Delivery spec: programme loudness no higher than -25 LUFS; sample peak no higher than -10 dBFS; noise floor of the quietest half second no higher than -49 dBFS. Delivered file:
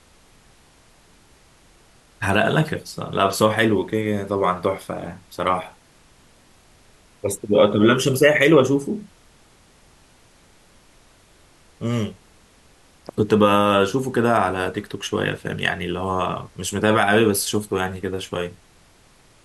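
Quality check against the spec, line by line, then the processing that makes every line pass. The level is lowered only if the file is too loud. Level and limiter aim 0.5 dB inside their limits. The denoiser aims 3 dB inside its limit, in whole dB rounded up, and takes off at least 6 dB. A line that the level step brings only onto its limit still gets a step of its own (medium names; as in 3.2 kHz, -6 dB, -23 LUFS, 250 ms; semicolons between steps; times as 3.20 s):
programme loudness -20.5 LUFS: fail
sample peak -3.5 dBFS: fail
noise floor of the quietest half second -53 dBFS: pass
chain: trim -5 dB; peak limiter -10.5 dBFS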